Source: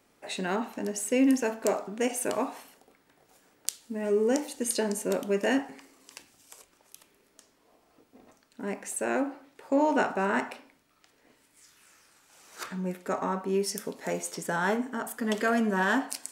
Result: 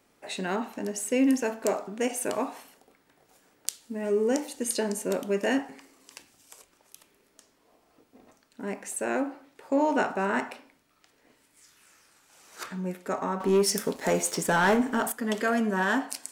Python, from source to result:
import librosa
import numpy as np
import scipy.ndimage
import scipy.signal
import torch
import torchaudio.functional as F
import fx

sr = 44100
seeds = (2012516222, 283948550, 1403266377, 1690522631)

y = fx.leveller(x, sr, passes=2, at=(13.4, 15.12))